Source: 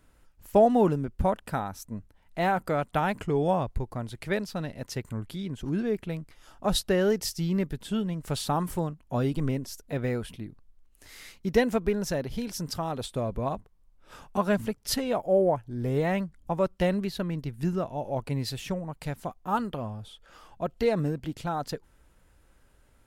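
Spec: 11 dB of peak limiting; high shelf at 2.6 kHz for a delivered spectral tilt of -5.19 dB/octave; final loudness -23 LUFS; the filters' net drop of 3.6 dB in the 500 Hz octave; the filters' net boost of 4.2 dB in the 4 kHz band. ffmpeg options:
-af "equalizer=f=500:t=o:g=-4.5,highshelf=f=2600:g=-3.5,equalizer=f=4000:t=o:g=8,volume=3.35,alimiter=limit=0.251:level=0:latency=1"

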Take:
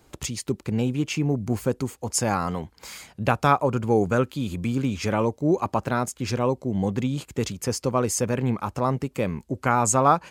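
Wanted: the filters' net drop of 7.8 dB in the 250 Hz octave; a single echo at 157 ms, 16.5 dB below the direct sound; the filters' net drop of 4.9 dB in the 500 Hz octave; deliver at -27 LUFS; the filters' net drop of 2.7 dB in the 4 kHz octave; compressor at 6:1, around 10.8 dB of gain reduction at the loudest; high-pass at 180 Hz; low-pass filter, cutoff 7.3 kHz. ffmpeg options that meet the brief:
-af "highpass=180,lowpass=7300,equalizer=f=250:t=o:g=-7,equalizer=f=500:t=o:g=-4,equalizer=f=4000:t=o:g=-3,acompressor=threshold=0.0501:ratio=6,aecho=1:1:157:0.15,volume=2.11"

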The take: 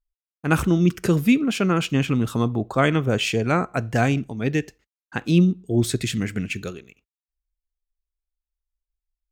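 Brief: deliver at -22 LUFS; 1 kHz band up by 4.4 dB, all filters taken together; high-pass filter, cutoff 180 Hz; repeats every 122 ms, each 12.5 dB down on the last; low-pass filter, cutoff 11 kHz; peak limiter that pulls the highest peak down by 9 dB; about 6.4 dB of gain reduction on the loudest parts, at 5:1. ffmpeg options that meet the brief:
-af "highpass=180,lowpass=11000,equalizer=f=1000:t=o:g=6.5,acompressor=threshold=0.112:ratio=5,alimiter=limit=0.211:level=0:latency=1,aecho=1:1:122|244|366:0.237|0.0569|0.0137,volume=1.68"

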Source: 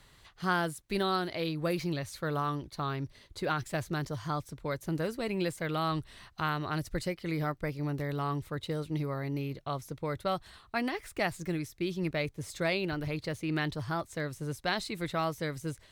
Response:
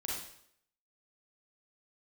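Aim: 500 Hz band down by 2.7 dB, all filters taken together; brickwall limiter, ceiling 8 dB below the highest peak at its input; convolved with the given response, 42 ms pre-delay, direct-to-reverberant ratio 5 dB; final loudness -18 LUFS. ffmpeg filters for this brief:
-filter_complex "[0:a]equalizer=f=500:t=o:g=-3.5,alimiter=level_in=1.12:limit=0.0631:level=0:latency=1,volume=0.891,asplit=2[s0][s1];[1:a]atrim=start_sample=2205,adelay=42[s2];[s1][s2]afir=irnorm=-1:irlink=0,volume=0.447[s3];[s0][s3]amix=inputs=2:normalize=0,volume=7.5"

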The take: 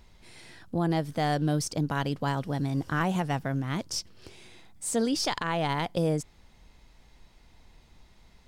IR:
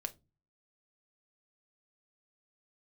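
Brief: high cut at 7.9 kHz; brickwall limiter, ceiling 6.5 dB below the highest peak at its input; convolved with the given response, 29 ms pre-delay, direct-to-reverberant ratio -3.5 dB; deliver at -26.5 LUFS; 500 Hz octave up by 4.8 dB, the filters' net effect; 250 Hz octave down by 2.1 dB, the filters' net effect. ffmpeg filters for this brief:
-filter_complex "[0:a]lowpass=7900,equalizer=f=250:t=o:g=-5.5,equalizer=f=500:t=o:g=7,alimiter=limit=0.0891:level=0:latency=1,asplit=2[s0][s1];[1:a]atrim=start_sample=2205,adelay=29[s2];[s1][s2]afir=irnorm=-1:irlink=0,volume=1.78[s3];[s0][s3]amix=inputs=2:normalize=0,volume=0.944"

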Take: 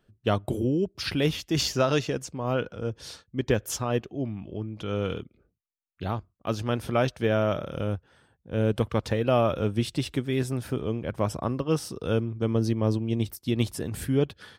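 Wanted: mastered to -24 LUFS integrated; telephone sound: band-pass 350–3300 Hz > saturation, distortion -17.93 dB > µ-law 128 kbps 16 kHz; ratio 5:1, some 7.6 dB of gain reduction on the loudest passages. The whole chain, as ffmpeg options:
-af "acompressor=threshold=0.0447:ratio=5,highpass=350,lowpass=3300,asoftclip=threshold=0.0596,volume=5.31" -ar 16000 -c:a pcm_mulaw

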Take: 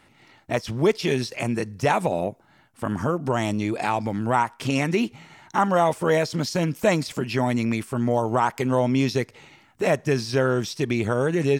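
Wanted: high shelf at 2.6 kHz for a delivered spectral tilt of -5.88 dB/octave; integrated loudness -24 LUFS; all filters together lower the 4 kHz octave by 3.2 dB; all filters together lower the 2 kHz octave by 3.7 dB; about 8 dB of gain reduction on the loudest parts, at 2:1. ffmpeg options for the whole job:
-af "equalizer=f=2000:t=o:g=-5,highshelf=f=2600:g=5.5,equalizer=f=4000:t=o:g=-8.5,acompressor=threshold=0.0316:ratio=2,volume=2.11"

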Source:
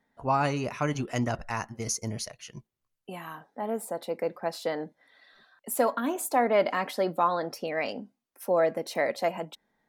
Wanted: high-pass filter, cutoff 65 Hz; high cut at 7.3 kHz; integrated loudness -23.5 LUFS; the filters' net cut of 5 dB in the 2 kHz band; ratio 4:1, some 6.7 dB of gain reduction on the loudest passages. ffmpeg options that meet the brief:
-af "highpass=65,lowpass=7300,equalizer=f=2000:t=o:g=-6,acompressor=threshold=0.0447:ratio=4,volume=3.35"

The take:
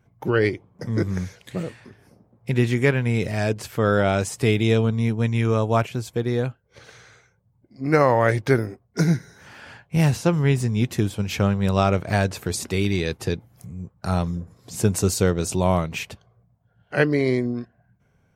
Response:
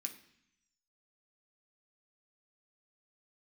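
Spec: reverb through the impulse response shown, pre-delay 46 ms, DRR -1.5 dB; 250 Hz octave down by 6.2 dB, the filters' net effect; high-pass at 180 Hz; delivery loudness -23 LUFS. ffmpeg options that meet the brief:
-filter_complex "[0:a]highpass=180,equalizer=f=250:t=o:g=-6.5,asplit=2[s0][s1];[1:a]atrim=start_sample=2205,adelay=46[s2];[s1][s2]afir=irnorm=-1:irlink=0,volume=1.68[s3];[s0][s3]amix=inputs=2:normalize=0,volume=0.944"

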